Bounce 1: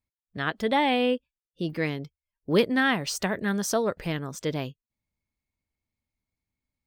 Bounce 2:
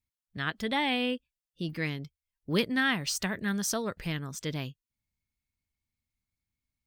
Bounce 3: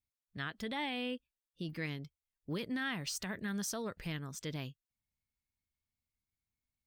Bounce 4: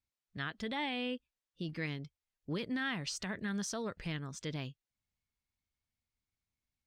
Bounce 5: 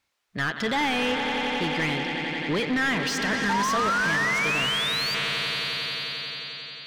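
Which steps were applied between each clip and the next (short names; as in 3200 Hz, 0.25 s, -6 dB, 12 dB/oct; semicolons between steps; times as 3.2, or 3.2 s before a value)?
bell 560 Hz -9.5 dB 2.2 oct
limiter -23 dBFS, peak gain reduction 10.5 dB; gain -5.5 dB
LPF 7100 Hz 12 dB/oct; gain +1 dB
painted sound rise, 3.49–5.15, 880–4800 Hz -39 dBFS; swelling echo 89 ms, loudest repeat 5, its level -13 dB; overdrive pedal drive 23 dB, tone 2700 Hz, clips at -21.5 dBFS; gain +5.5 dB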